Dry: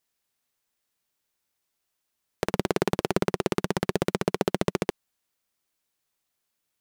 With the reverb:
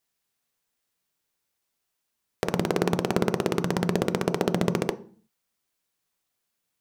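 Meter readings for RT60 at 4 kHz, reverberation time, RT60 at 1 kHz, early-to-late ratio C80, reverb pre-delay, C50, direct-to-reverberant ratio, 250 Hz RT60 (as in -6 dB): 0.40 s, 0.45 s, 0.45 s, 23.0 dB, 3 ms, 18.5 dB, 11.0 dB, 0.70 s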